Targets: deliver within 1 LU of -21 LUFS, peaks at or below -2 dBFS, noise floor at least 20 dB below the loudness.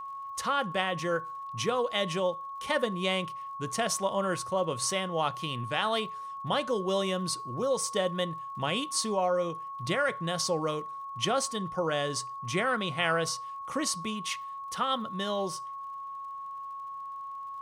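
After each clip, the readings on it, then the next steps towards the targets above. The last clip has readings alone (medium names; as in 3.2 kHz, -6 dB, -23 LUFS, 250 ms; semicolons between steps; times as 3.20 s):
tick rate 51 per s; steady tone 1.1 kHz; tone level -37 dBFS; loudness -31.0 LUFS; peak level -13.5 dBFS; loudness target -21.0 LUFS
-> de-click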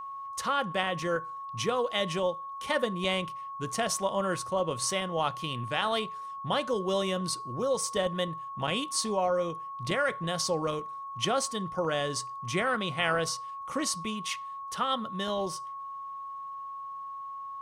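tick rate 0.51 per s; steady tone 1.1 kHz; tone level -37 dBFS
-> band-stop 1.1 kHz, Q 30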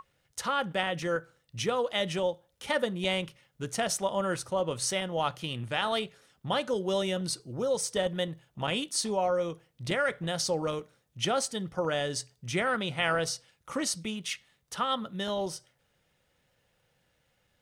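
steady tone not found; loudness -31.0 LUFS; peak level -14.0 dBFS; loudness target -21.0 LUFS
-> trim +10 dB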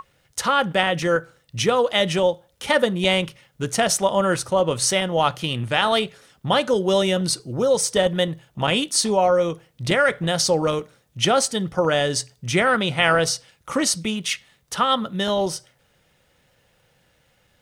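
loudness -21.0 LUFS; peak level -4.0 dBFS; noise floor -63 dBFS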